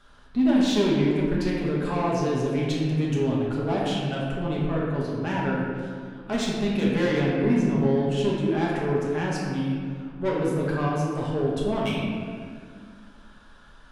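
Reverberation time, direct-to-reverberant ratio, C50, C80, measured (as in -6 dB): 2.0 s, -5.0 dB, -1.0 dB, 1.0 dB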